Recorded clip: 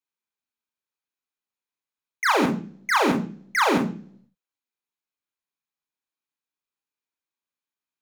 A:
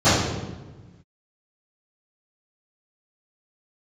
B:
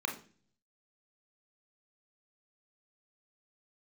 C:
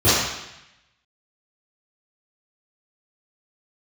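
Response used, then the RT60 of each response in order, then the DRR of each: B; 1.2, 0.40, 0.90 s; -19.5, 2.0, -15.5 dB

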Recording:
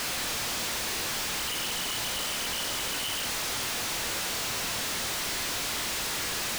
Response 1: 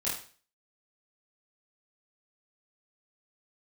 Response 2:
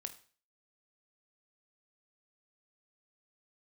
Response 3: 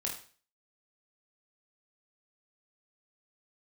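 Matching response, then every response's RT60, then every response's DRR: 2; 0.40, 0.40, 0.40 s; -9.0, 8.0, -2.0 dB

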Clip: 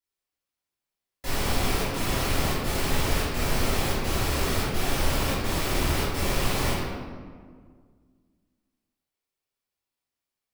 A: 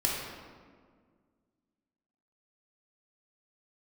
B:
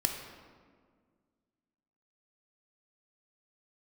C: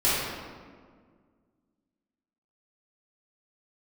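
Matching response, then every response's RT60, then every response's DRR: C; 1.8, 1.8, 1.8 s; -4.5, 2.5, -12.0 dB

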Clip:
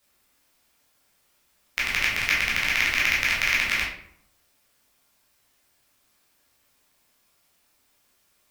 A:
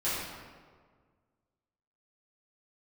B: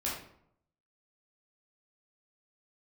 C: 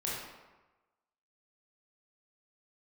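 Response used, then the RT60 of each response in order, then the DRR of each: B; 1.7, 0.70, 1.1 s; -12.0, -6.5, -6.5 dB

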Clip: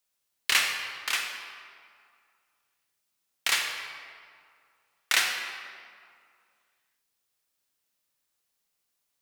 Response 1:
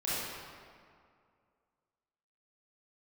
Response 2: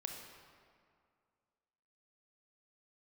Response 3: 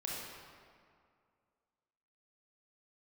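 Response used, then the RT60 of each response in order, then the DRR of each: 2; 2.2, 2.2, 2.2 s; -10.5, 2.0, -4.5 dB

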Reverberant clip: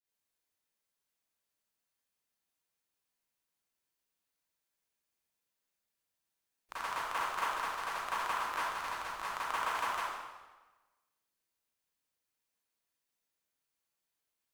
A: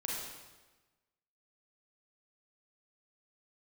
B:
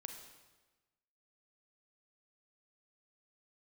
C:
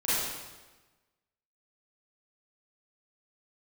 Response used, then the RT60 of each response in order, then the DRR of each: C; 1.2, 1.2, 1.2 s; -4.0, 4.5, -12.5 dB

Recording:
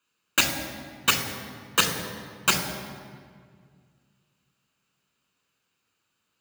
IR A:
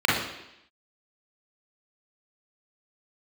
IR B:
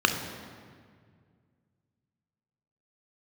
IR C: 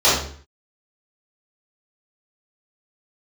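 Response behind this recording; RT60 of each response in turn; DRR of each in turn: B; 0.85, 2.0, 0.50 s; -6.5, 4.5, -13.0 dB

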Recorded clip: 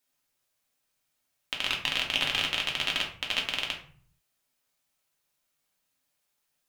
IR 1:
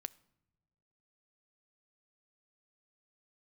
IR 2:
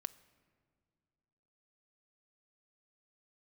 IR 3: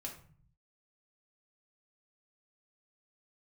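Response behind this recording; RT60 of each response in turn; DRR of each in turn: 3; not exponential, not exponential, 0.45 s; 17.0, 14.0, -1.0 dB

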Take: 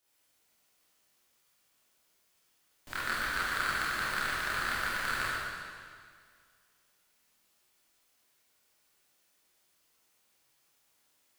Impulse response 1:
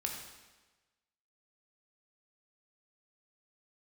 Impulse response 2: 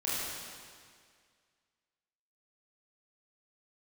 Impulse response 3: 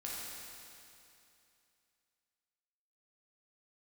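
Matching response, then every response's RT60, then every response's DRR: 2; 1.2, 2.0, 2.7 s; 0.5, -9.5, -6.0 dB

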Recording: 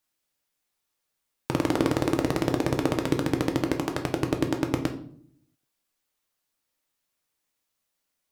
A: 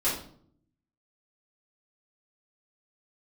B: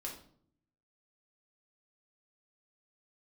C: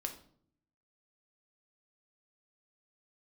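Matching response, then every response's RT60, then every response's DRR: C; 0.60, 0.60, 0.60 s; -10.5, -2.0, 4.0 dB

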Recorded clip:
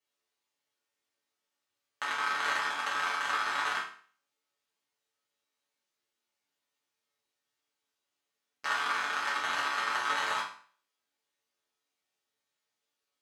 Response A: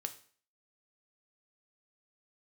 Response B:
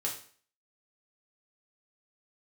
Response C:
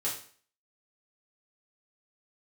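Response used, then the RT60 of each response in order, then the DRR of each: C; 0.45, 0.45, 0.45 s; 7.0, -3.0, -7.0 dB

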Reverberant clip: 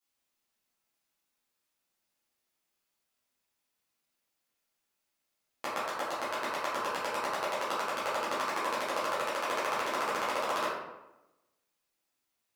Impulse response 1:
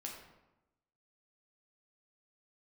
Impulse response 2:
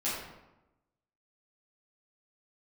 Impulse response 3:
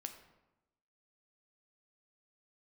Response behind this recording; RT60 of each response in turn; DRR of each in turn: 2; 1.0, 1.0, 1.0 s; -1.0, -10.5, 6.0 dB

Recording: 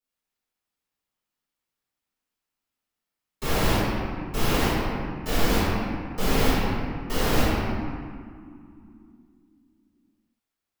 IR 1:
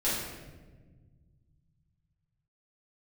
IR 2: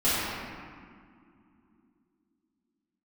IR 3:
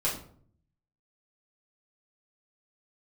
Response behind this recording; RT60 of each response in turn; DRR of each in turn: 2; 1.4, 2.5, 0.55 s; -11.0, -14.5, -6.5 dB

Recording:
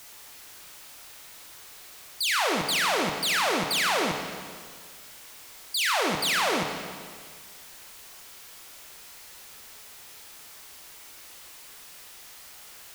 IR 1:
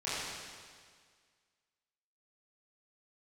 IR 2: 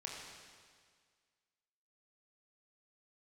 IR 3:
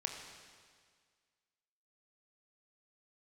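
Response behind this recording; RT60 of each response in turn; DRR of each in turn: 3; 1.8, 1.8, 1.8 s; -13.0, -3.0, 2.0 dB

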